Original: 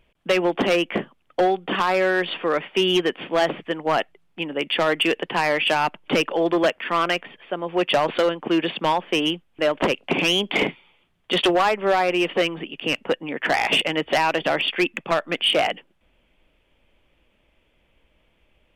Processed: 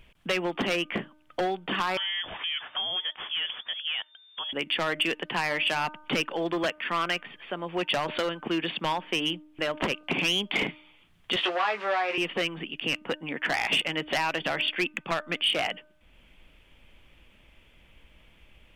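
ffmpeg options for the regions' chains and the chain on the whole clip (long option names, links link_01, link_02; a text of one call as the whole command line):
ffmpeg -i in.wav -filter_complex "[0:a]asettb=1/sr,asplit=3[link_01][link_02][link_03];[link_01]atrim=end=1.974[link_04];[link_02]atrim=start=1.97:end=4.53,asetpts=PTS-STARTPTS,afade=type=in:duration=0.004:curve=qsin,afade=type=out:start_time=2.556:duration=0.004:curve=qsin,acompressor=threshold=-32dB:ratio=2:attack=3.2:release=140:knee=1:detection=peak,lowpass=frequency=3100:width_type=q:width=0.5098,lowpass=frequency=3100:width_type=q:width=0.6013,lowpass=frequency=3100:width_type=q:width=0.9,lowpass=frequency=3100:width_type=q:width=2.563,afreqshift=-3600[link_05];[link_03]atrim=start=4.526[link_06];[link_04][link_05]acrossfade=duration=0.004:curve1=hsin:curve2=qsin[link_07];[link_07][link_06]acrossfade=duration=0.004:curve1=qsin:curve2=hsin,asettb=1/sr,asplit=3[link_08][link_09][link_10];[link_08]atrim=end=11.364[link_11];[link_09]atrim=start=11.36:end=12.18,asetpts=PTS-STARTPTS,afade=type=in:duration=0.004:curve=qsin,afade=type=out:start_time=0.816:duration=0.004:curve=qsin,aeval=exprs='val(0)+0.5*0.0355*sgn(val(0))':channel_layout=same,highpass=480,lowpass=3000,asplit=2[link_12][link_13];[link_13]adelay=19,volume=-5dB[link_14];[link_12][link_14]amix=inputs=2:normalize=0,atrim=end_sample=36162[link_15];[link_10]atrim=start=12.176[link_16];[link_11][link_15]acrossfade=duration=0.004:curve1=hsin:curve2=qsin[link_17];[link_17][link_16]acrossfade=duration=0.004:curve1=qsin:curve2=hsin,equalizer=frequency=510:width=0.7:gain=-7,bandreject=frequency=304.9:width_type=h:width=4,bandreject=frequency=609.8:width_type=h:width=4,bandreject=frequency=914.7:width_type=h:width=4,bandreject=frequency=1219.6:width_type=h:width=4,bandreject=frequency=1524.5:width_type=h:width=4,acompressor=threshold=-54dB:ratio=1.5,volume=8dB" out.wav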